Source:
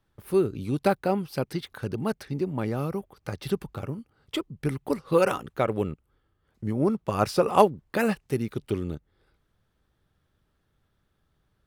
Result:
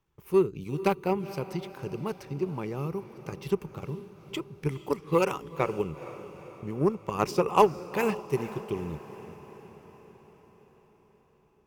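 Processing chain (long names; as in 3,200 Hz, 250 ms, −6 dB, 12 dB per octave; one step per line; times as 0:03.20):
harmonic generator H 7 −26 dB, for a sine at −4 dBFS
in parallel at −2.5 dB: output level in coarse steps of 13 dB
on the sum: EQ curve with evenly spaced ripples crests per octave 0.75, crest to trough 8 dB
feedback delay with all-pass diffusion 458 ms, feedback 58%, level −14.5 dB
level −4.5 dB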